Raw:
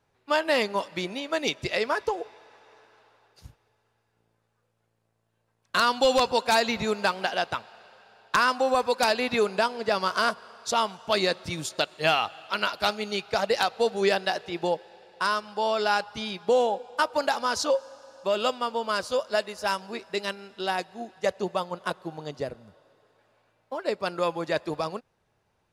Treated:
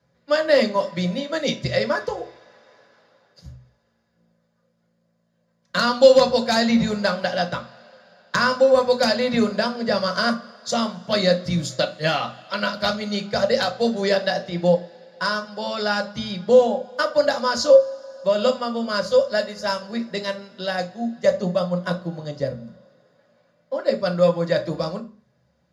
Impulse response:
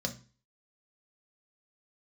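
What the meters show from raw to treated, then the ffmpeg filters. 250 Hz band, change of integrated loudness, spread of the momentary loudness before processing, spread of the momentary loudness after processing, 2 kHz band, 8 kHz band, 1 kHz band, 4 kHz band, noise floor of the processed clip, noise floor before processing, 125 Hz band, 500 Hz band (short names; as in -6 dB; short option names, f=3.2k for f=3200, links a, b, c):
+10.0 dB, +5.5 dB, 10 LU, 12 LU, +2.5 dB, +1.5 dB, 0.0 dB, +3.5 dB, -68 dBFS, -74 dBFS, +12.5 dB, +7.5 dB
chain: -filter_complex "[1:a]atrim=start_sample=2205[a];[0:a][a]afir=irnorm=-1:irlink=0,volume=-1dB"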